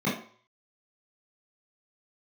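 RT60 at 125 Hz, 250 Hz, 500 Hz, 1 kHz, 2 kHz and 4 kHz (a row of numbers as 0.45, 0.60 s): 0.40, 0.40, 0.45, 0.55, 0.45, 0.45 s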